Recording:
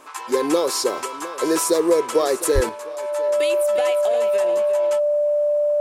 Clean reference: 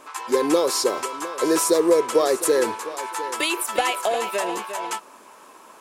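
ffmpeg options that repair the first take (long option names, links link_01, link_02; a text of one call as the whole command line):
ffmpeg -i in.wav -filter_complex "[0:a]bandreject=frequency=590:width=30,asplit=3[link_01][link_02][link_03];[link_01]afade=type=out:start_time=2.54:duration=0.02[link_04];[link_02]highpass=frequency=140:width=0.5412,highpass=frequency=140:width=1.3066,afade=type=in:start_time=2.54:duration=0.02,afade=type=out:start_time=2.66:duration=0.02[link_05];[link_03]afade=type=in:start_time=2.66:duration=0.02[link_06];[link_04][link_05][link_06]amix=inputs=3:normalize=0,asetnsamples=nb_out_samples=441:pad=0,asendcmd='2.69 volume volume 6dB',volume=0dB" out.wav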